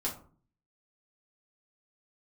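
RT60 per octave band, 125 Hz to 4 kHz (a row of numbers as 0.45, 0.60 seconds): 0.70, 0.65, 0.45, 0.45, 0.30, 0.20 seconds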